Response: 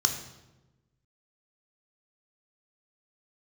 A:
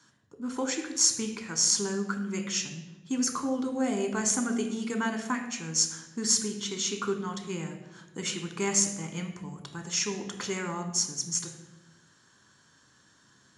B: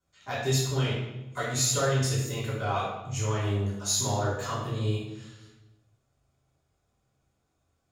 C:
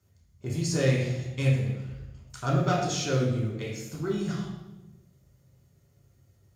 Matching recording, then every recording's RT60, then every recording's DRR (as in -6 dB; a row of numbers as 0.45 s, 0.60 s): A; 1.1 s, 1.1 s, 1.1 s; 4.5 dB, -9.5 dB, -3.5 dB